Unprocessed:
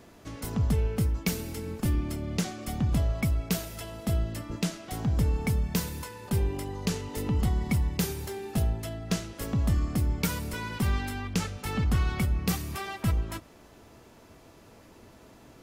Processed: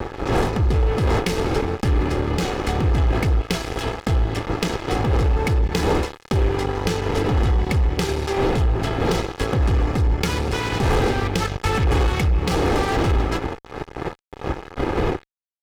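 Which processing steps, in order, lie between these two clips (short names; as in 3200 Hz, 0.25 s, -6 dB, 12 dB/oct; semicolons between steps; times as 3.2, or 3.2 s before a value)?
wind noise 470 Hz -33 dBFS; LPF 4300 Hz 12 dB/oct; fuzz box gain 29 dB, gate -37 dBFS; compressor, threshold -20 dBFS, peak gain reduction 6.5 dB; comb 2.4 ms, depth 45%; gain +2.5 dB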